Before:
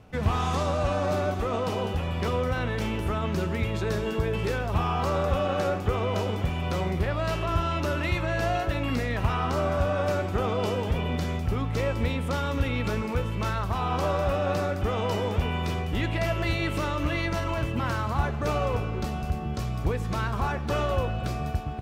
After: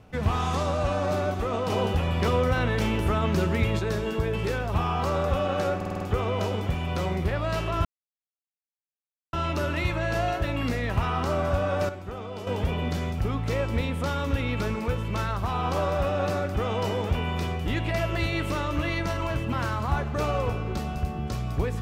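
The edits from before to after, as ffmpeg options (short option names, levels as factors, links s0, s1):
-filter_complex "[0:a]asplit=11[s0][s1][s2][s3][s4][s5][s6][s7][s8][s9][s10];[s0]atrim=end=1.702[s11];[s1]atrim=start=1.698:end=3.792,asetpts=PTS-STARTPTS,volume=1.5[s12];[s2]atrim=start=3.788:end=5.812[s13];[s3]atrim=start=5.758:end=5.812[s14];[s4]atrim=start=5.758:end=5.812[s15];[s5]atrim=start=5.758:end=5.812[s16];[s6]atrim=start=5.758:end=5.812[s17];[s7]atrim=start=5.758:end=7.6,asetpts=PTS-STARTPTS,afade=t=out:st=1.838:d=0.004:c=hsin,apad=pad_dur=1.48[s18];[s8]atrim=start=7.6:end=10.162,asetpts=PTS-STARTPTS,afade=t=in:d=0.004:c=hsin[s19];[s9]atrim=start=10.158:end=10.742,asetpts=PTS-STARTPTS,volume=0.335[s20];[s10]atrim=start=10.738[s21];[s11][s12]acrossfade=d=0.004:c1=hsin:c2=hsin[s22];[s22][s13]acrossfade=d=0.004:c1=hsin:c2=hsin[s23];[s23][s14]acrossfade=d=0.004:c1=hsin:c2=hsin[s24];[s24][s15]acrossfade=d=0.004:c1=hsin:c2=hsin[s25];[s25][s16]acrossfade=d=0.004:c1=hsin:c2=hsin[s26];[s26][s17]acrossfade=d=0.004:c1=hsin:c2=hsin[s27];[s18][s19]concat=n=2:v=0:a=1[s28];[s27][s28]acrossfade=d=0.004:c1=hsin:c2=hsin[s29];[s29][s20]acrossfade=d=0.004:c1=hsin:c2=hsin[s30];[s30][s21]acrossfade=d=0.004:c1=hsin:c2=hsin"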